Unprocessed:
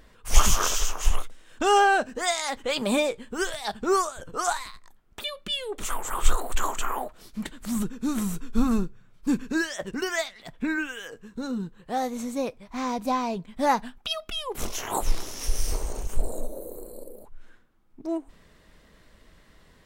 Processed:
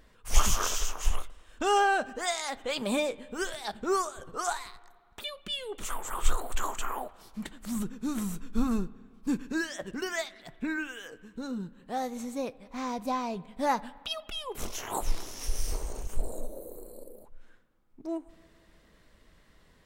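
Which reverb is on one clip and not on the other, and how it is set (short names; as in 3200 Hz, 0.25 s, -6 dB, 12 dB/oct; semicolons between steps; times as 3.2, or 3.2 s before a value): spring tank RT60 2 s, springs 53/60 ms, chirp 65 ms, DRR 20 dB; gain -5 dB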